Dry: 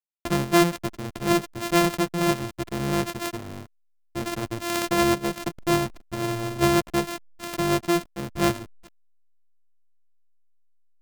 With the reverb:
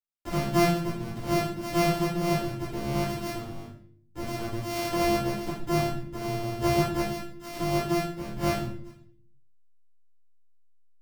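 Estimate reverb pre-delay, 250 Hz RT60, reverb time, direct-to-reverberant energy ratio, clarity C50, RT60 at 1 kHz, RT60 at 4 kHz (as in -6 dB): 9 ms, 0.85 s, 0.55 s, -11.5 dB, 2.0 dB, 0.50 s, 0.50 s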